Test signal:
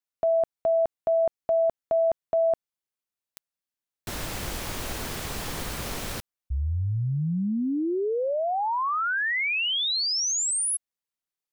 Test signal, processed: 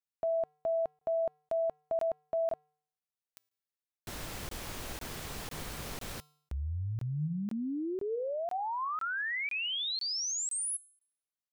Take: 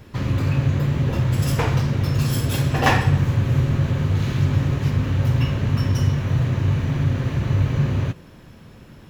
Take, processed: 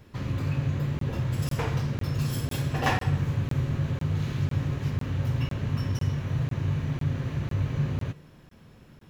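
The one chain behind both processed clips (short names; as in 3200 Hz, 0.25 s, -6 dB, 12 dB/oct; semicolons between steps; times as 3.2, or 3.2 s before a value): resonator 150 Hz, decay 0.63 s, harmonics odd, mix 50%; crackling interface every 0.50 s, samples 1024, zero, from 0.99; gain -2.5 dB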